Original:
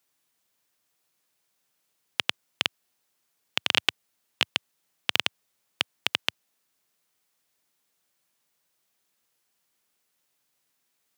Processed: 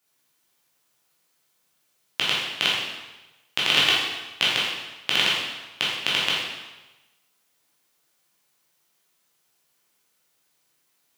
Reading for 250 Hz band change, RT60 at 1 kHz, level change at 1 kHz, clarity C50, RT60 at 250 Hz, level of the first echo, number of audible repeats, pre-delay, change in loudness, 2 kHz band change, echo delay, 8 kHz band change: +6.5 dB, 1.1 s, +6.5 dB, -0.5 dB, 1.0 s, no echo, no echo, 6 ms, +5.5 dB, +6.0 dB, no echo, +6.0 dB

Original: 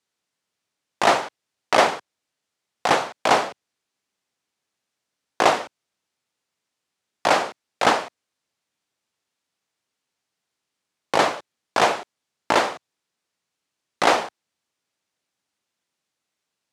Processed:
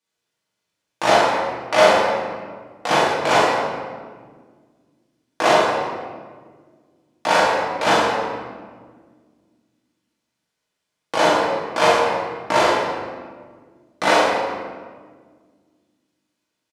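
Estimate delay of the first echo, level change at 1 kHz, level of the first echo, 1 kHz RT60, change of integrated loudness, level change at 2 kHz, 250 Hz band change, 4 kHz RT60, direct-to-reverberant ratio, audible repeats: 42 ms, +3.5 dB, -0.5 dB, 1.5 s, +2.5 dB, +4.0 dB, +4.5 dB, 1.0 s, -8.5 dB, 1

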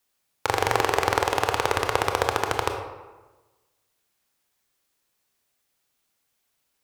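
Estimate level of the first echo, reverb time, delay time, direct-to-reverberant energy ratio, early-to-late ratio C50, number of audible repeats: no echo, 1.2 s, no echo, 4.0 dB, 6.0 dB, no echo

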